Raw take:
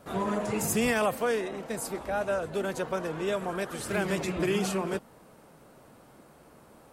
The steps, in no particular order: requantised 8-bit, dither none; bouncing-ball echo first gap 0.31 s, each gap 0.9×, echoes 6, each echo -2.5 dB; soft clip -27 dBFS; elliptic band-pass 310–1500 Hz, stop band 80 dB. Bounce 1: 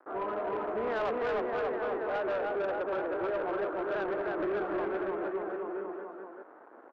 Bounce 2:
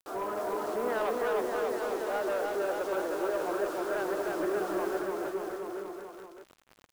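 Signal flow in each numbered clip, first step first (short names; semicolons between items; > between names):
bouncing-ball echo > requantised > elliptic band-pass > soft clip; elliptic band-pass > requantised > soft clip > bouncing-ball echo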